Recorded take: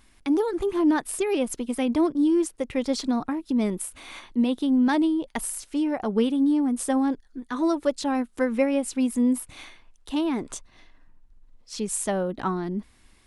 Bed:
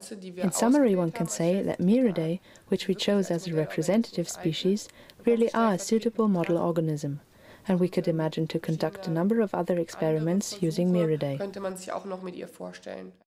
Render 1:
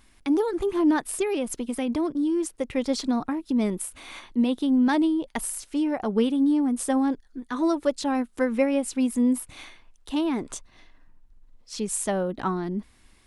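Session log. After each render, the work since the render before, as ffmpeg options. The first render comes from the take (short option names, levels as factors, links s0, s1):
-filter_complex "[0:a]asettb=1/sr,asplit=3[s0][s1][s2];[s0]atrim=end=1.264[s3];[s1]atrim=start=1.26:end=2.46,asetpts=PTS-STARTPTS,afade=t=in:d=0.004:c=qsin,afade=t=out:st=1.196:d=0.004:c=qsin,acompressor=threshold=0.0708:ratio=2.5:attack=3.2:release=140:knee=1:detection=peak[s4];[s2]atrim=start=2.456[s5];[s3][s4]acrossfade=d=0.004:c1=hsin:c2=qsin[s6];[s6][s5]acrossfade=d=0.004:c1=qsin:c2=hsin"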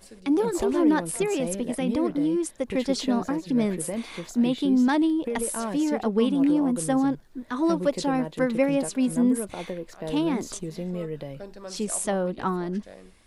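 -filter_complex "[1:a]volume=0.422[s0];[0:a][s0]amix=inputs=2:normalize=0"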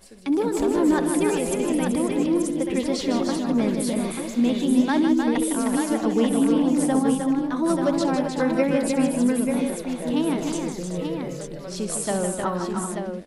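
-af "aecho=1:1:66|156|308|383|884:0.188|0.422|0.531|0.335|0.501"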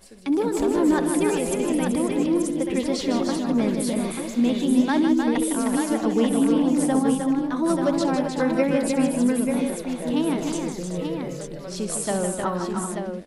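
-af anull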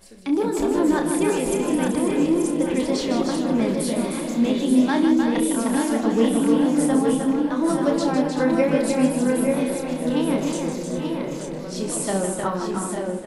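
-filter_complex "[0:a]asplit=2[s0][s1];[s1]adelay=31,volume=0.473[s2];[s0][s2]amix=inputs=2:normalize=0,asplit=2[s3][s4];[s4]adelay=851,lowpass=f=3300:p=1,volume=0.398,asplit=2[s5][s6];[s6]adelay=851,lowpass=f=3300:p=1,volume=0.52,asplit=2[s7][s8];[s8]adelay=851,lowpass=f=3300:p=1,volume=0.52,asplit=2[s9][s10];[s10]adelay=851,lowpass=f=3300:p=1,volume=0.52,asplit=2[s11][s12];[s12]adelay=851,lowpass=f=3300:p=1,volume=0.52,asplit=2[s13][s14];[s14]adelay=851,lowpass=f=3300:p=1,volume=0.52[s15];[s3][s5][s7][s9][s11][s13][s15]amix=inputs=7:normalize=0"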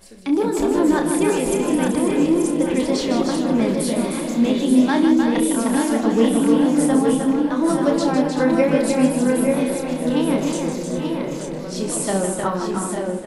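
-af "volume=1.33"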